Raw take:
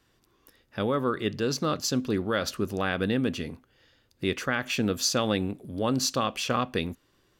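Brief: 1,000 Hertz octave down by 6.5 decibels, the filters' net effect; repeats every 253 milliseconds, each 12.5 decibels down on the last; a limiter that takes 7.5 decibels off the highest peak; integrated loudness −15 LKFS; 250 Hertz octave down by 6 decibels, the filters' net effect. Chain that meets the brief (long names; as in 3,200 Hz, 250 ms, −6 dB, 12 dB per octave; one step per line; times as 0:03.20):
parametric band 250 Hz −7 dB
parametric band 1,000 Hz −8.5 dB
brickwall limiter −21.5 dBFS
repeating echo 253 ms, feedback 24%, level −12.5 dB
level +17.5 dB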